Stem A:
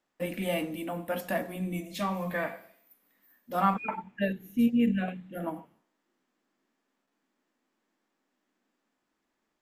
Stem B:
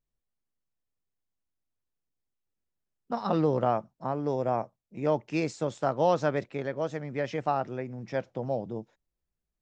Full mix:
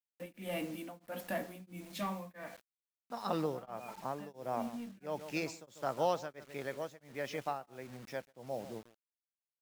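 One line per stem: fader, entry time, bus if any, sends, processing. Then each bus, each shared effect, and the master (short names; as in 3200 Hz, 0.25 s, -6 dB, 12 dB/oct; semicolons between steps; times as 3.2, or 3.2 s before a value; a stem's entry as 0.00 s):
-13.0 dB, 0.00 s, no send, no echo send, HPF 52 Hz 12 dB/oct; sample leveller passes 2; auto duck -9 dB, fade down 0.75 s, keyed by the second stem
-5.5 dB, 0.00 s, no send, echo send -15 dB, tilt +2 dB/oct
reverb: off
echo: echo 0.143 s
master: bit-crush 9-bit; beating tremolo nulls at 1.5 Hz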